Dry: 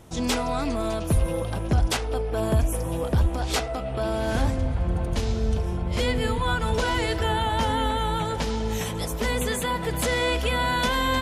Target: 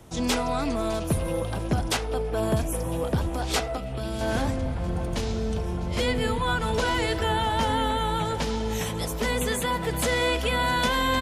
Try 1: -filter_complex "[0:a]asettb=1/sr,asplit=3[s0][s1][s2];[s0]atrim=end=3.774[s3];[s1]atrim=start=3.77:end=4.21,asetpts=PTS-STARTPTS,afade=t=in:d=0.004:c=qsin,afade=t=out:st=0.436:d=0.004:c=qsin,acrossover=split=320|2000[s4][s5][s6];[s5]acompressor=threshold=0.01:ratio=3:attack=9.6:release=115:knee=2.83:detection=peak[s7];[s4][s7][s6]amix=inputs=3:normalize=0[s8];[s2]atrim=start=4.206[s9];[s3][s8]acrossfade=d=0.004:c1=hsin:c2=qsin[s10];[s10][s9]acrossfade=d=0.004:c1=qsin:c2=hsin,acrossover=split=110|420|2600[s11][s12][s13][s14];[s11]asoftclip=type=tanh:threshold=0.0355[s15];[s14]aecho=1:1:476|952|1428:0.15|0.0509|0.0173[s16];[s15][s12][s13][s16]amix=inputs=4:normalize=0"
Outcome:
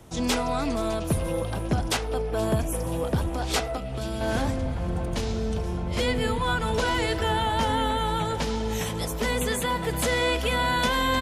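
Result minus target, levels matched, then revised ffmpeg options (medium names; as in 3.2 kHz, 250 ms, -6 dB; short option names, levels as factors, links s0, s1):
echo 175 ms early
-filter_complex "[0:a]asettb=1/sr,asplit=3[s0][s1][s2];[s0]atrim=end=3.774[s3];[s1]atrim=start=3.77:end=4.21,asetpts=PTS-STARTPTS,afade=t=in:d=0.004:c=qsin,afade=t=out:st=0.436:d=0.004:c=qsin,acrossover=split=320|2000[s4][s5][s6];[s5]acompressor=threshold=0.01:ratio=3:attack=9.6:release=115:knee=2.83:detection=peak[s7];[s4][s7][s6]amix=inputs=3:normalize=0[s8];[s2]atrim=start=4.206[s9];[s3][s8]acrossfade=d=0.004:c1=hsin:c2=qsin[s10];[s10][s9]acrossfade=d=0.004:c1=qsin:c2=hsin,acrossover=split=110|420|2600[s11][s12][s13][s14];[s11]asoftclip=type=tanh:threshold=0.0355[s15];[s14]aecho=1:1:651|1302|1953:0.15|0.0509|0.0173[s16];[s15][s12][s13][s16]amix=inputs=4:normalize=0"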